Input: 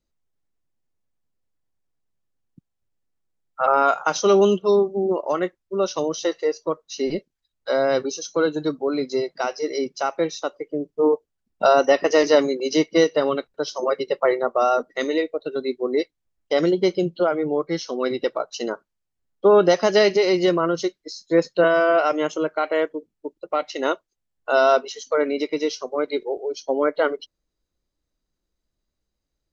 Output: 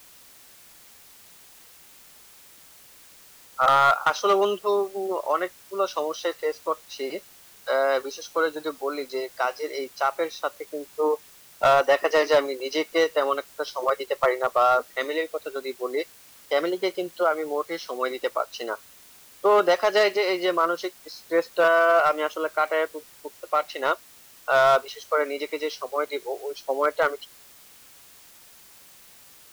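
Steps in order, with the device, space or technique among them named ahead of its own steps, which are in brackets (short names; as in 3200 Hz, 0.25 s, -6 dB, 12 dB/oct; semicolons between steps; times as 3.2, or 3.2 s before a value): drive-through speaker (BPF 550–4000 Hz; bell 1200 Hz +4.5 dB 0.53 oct; hard clip -12 dBFS, distortion -18 dB; white noise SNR 25 dB)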